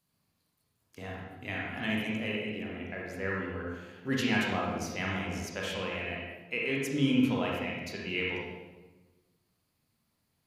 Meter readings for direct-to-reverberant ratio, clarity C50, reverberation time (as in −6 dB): −3.5 dB, −1.0 dB, 1.2 s